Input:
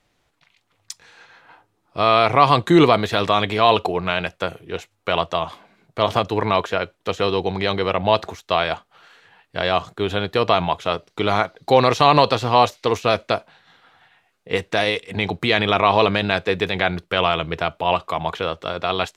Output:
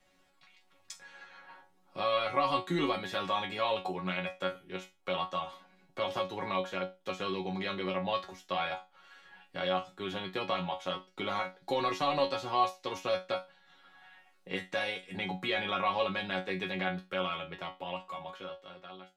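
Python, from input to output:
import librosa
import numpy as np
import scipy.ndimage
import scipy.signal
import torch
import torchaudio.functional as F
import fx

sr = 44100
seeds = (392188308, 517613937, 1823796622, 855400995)

y = fx.fade_out_tail(x, sr, length_s=2.52)
y = fx.resonator_bank(y, sr, root=54, chord='fifth', decay_s=0.23)
y = fx.band_squash(y, sr, depth_pct=40)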